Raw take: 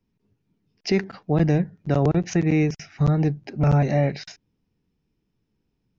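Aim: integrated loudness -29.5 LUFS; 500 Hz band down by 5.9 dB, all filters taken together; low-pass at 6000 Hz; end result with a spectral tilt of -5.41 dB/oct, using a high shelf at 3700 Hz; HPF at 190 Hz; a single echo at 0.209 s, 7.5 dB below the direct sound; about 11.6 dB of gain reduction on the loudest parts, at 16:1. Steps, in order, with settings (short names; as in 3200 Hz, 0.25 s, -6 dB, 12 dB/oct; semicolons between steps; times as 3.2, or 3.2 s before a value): HPF 190 Hz; LPF 6000 Hz; bell 500 Hz -7.5 dB; high shelf 3700 Hz +3.5 dB; compressor 16:1, threshold -31 dBFS; echo 0.209 s -7.5 dB; gain +7 dB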